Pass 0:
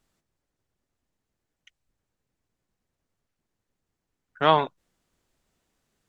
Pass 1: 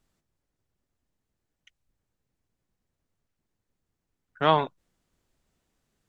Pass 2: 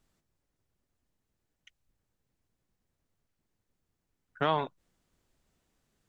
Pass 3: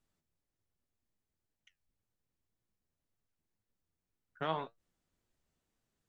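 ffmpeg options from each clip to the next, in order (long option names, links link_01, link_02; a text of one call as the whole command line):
ffmpeg -i in.wav -af "lowshelf=frequency=240:gain=4.5,volume=-2.5dB" out.wav
ffmpeg -i in.wav -af "alimiter=limit=-15.5dB:level=0:latency=1:release=312" out.wav
ffmpeg -i in.wav -af "flanger=delay=8.5:depth=4.2:regen=65:speed=1.9:shape=sinusoidal,volume=-4dB" out.wav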